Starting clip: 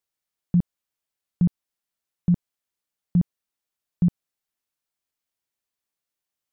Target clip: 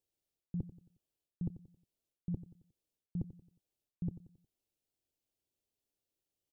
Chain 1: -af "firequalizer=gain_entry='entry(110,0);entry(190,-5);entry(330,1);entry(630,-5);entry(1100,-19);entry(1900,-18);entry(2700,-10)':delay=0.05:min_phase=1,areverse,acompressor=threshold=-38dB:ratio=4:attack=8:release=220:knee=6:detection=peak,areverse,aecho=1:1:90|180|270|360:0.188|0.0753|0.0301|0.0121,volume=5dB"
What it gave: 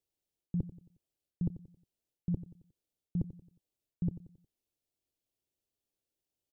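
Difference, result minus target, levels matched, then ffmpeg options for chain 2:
compressor: peak gain reduction -5 dB
-af "firequalizer=gain_entry='entry(110,0);entry(190,-5);entry(330,1);entry(630,-5);entry(1100,-19);entry(1900,-18);entry(2700,-10)':delay=0.05:min_phase=1,areverse,acompressor=threshold=-44.5dB:ratio=4:attack=8:release=220:knee=6:detection=peak,areverse,aecho=1:1:90|180|270|360:0.188|0.0753|0.0301|0.0121,volume=5dB"

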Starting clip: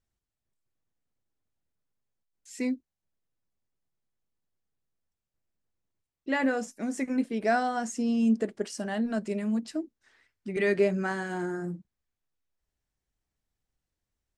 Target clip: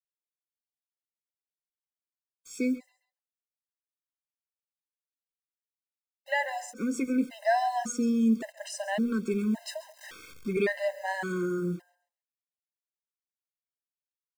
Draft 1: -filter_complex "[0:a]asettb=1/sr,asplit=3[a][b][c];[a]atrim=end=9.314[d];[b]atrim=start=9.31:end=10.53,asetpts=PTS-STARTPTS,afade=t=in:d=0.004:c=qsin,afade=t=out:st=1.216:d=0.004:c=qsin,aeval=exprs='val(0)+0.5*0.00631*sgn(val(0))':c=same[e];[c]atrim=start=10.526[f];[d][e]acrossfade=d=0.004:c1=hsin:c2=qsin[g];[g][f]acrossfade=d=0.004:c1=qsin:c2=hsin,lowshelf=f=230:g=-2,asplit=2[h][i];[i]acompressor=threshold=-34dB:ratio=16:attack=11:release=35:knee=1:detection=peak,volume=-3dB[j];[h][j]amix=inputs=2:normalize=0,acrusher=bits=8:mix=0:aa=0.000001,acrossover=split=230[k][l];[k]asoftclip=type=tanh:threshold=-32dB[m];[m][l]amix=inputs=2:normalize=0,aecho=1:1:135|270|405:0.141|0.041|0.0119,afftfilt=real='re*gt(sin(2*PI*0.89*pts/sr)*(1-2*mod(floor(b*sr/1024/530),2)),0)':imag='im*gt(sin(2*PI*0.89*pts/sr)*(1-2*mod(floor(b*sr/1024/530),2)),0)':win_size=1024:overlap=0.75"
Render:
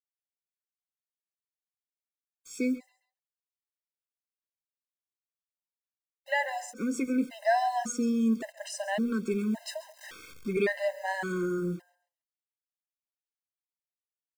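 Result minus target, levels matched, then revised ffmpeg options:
soft clip: distortion +14 dB
-filter_complex "[0:a]asettb=1/sr,asplit=3[a][b][c];[a]atrim=end=9.314[d];[b]atrim=start=9.31:end=10.53,asetpts=PTS-STARTPTS,afade=t=in:d=0.004:c=qsin,afade=t=out:st=1.216:d=0.004:c=qsin,aeval=exprs='val(0)+0.5*0.00631*sgn(val(0))':c=same[e];[c]atrim=start=10.526[f];[d][e]acrossfade=d=0.004:c1=hsin:c2=qsin[g];[g][f]acrossfade=d=0.004:c1=qsin:c2=hsin,lowshelf=f=230:g=-2,asplit=2[h][i];[i]acompressor=threshold=-34dB:ratio=16:attack=11:release=35:knee=1:detection=peak,volume=-3dB[j];[h][j]amix=inputs=2:normalize=0,acrusher=bits=8:mix=0:aa=0.000001,acrossover=split=230[k][l];[k]asoftclip=type=tanh:threshold=-21.5dB[m];[m][l]amix=inputs=2:normalize=0,aecho=1:1:135|270|405:0.141|0.041|0.0119,afftfilt=real='re*gt(sin(2*PI*0.89*pts/sr)*(1-2*mod(floor(b*sr/1024/530),2)),0)':imag='im*gt(sin(2*PI*0.89*pts/sr)*(1-2*mod(floor(b*sr/1024/530),2)),0)':win_size=1024:overlap=0.75"

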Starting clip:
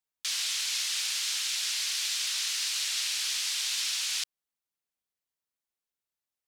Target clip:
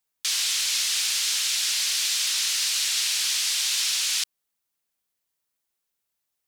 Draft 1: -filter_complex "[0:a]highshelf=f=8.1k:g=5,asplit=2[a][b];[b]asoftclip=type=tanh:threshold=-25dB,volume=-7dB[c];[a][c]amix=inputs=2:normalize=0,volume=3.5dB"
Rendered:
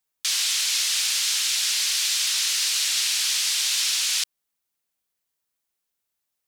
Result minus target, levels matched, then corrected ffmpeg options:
soft clip: distortion -10 dB
-filter_complex "[0:a]highshelf=f=8.1k:g=5,asplit=2[a][b];[b]asoftclip=type=tanh:threshold=-36.5dB,volume=-7dB[c];[a][c]amix=inputs=2:normalize=0,volume=3.5dB"

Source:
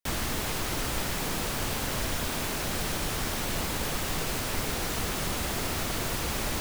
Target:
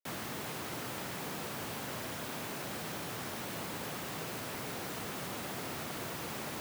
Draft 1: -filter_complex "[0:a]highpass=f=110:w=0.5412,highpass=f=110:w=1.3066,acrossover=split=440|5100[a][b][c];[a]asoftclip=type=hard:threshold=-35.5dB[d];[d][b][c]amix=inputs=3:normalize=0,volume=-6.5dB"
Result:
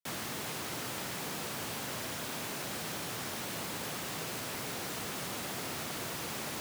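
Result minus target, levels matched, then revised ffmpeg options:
8000 Hz band +2.5 dB
-filter_complex "[0:a]highpass=f=110:w=0.5412,highpass=f=110:w=1.3066,equalizer=f=6.8k:w=0.37:g=-5,acrossover=split=440|5100[a][b][c];[a]asoftclip=type=hard:threshold=-35.5dB[d];[d][b][c]amix=inputs=3:normalize=0,volume=-6.5dB"

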